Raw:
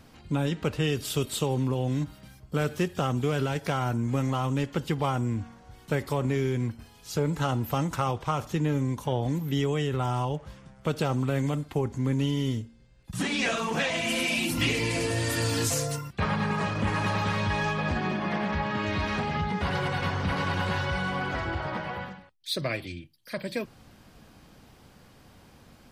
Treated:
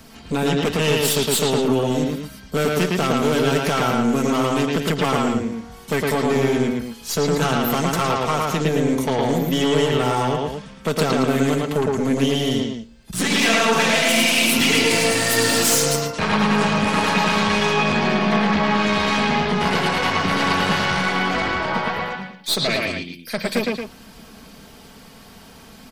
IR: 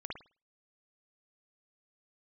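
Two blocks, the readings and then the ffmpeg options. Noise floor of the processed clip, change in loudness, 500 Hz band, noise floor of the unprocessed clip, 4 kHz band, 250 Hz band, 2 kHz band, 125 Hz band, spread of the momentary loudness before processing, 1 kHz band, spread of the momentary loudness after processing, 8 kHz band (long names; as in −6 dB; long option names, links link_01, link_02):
−44 dBFS, +9.0 dB, +10.5 dB, −55 dBFS, +12.5 dB, +9.5 dB, +10.5 dB, +2.5 dB, 8 LU, +10.0 dB, 10 LU, +13.0 dB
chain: -filter_complex "[0:a]highshelf=frequency=4100:gain=7.5,aecho=1:1:4.5:0.48,aeval=exprs='0.316*(cos(1*acos(clip(val(0)/0.316,-1,1)))-cos(1*PI/2))+0.0708*(cos(5*acos(clip(val(0)/0.316,-1,1)))-cos(5*PI/2))+0.0562*(cos(8*acos(clip(val(0)/0.316,-1,1)))-cos(8*PI/2))':channel_layout=same,acrossover=split=130|6300[link_01][link_02][link_03];[link_01]asoftclip=type=tanh:threshold=-35dB[link_04];[link_02]aecho=1:1:110.8|224.5:0.891|0.447[link_05];[link_04][link_05][link_03]amix=inputs=3:normalize=0"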